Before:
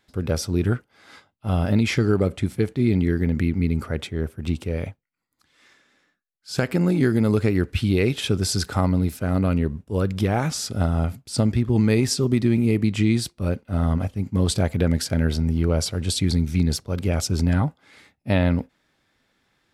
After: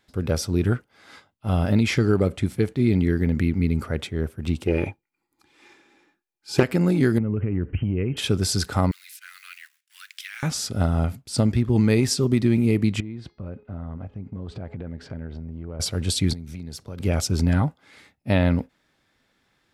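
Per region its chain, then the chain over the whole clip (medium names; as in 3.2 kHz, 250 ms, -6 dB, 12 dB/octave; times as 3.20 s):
4.67–6.63 s: small resonant body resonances 350/840/2400 Hz, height 15 dB, ringing for 40 ms + loudspeaker Doppler distortion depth 0.32 ms
7.18–8.17 s: bass shelf 400 Hz +12 dB + compression 12:1, threshold -20 dBFS + brick-wall FIR low-pass 3.2 kHz
8.91–10.43 s: companding laws mixed up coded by A + steep high-pass 1.7 kHz
13.00–15.80 s: Bessel low-pass 1.5 kHz + de-hum 419.5 Hz, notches 14 + compression 10:1, threshold -30 dBFS
16.33–17.00 s: compression 8:1, threshold -31 dBFS + high-pass 62 Hz
whole clip: none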